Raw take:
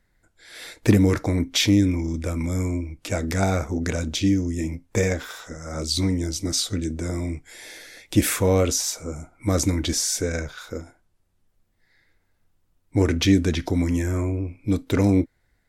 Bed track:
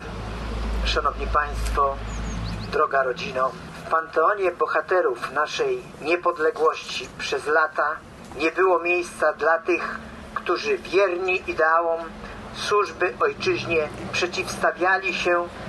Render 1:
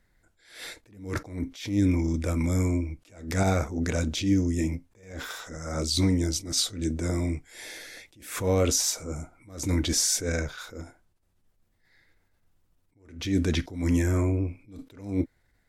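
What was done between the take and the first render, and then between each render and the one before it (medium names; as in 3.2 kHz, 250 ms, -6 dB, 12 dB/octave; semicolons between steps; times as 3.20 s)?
peak limiter -13.5 dBFS, peak gain reduction 8.5 dB; attacks held to a fixed rise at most 110 dB/s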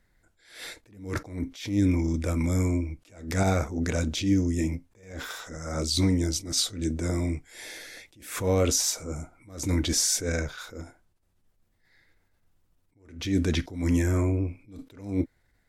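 no audible change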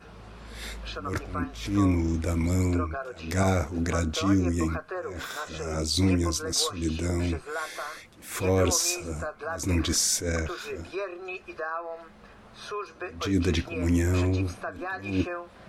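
add bed track -14 dB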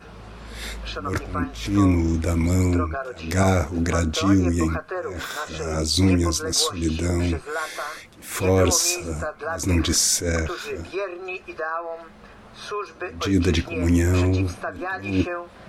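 trim +5 dB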